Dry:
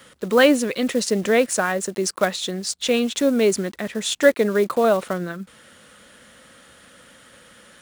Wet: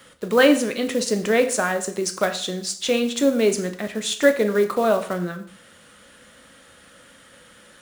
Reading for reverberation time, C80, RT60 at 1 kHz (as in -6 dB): 0.55 s, 15.5 dB, 0.55 s